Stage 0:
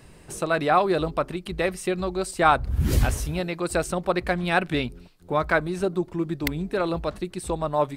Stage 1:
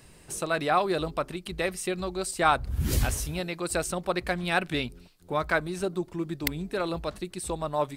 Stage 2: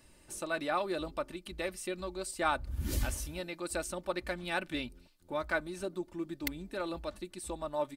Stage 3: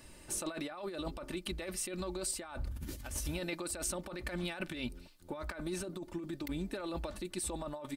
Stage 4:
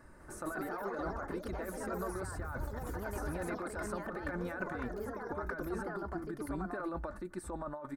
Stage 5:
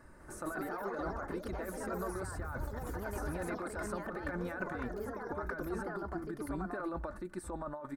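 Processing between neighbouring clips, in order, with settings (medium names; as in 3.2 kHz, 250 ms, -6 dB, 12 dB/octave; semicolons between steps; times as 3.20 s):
treble shelf 2.9 kHz +7.5 dB; trim -5 dB
comb 3.4 ms, depth 51%; trim -8.5 dB
compressor with a negative ratio -41 dBFS, ratio -1; trim +1.5 dB
ever faster or slower copies 201 ms, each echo +3 st, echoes 3; resonant high shelf 2.1 kHz -12 dB, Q 3; trim -1.5 dB
pre-echo 39 ms -23 dB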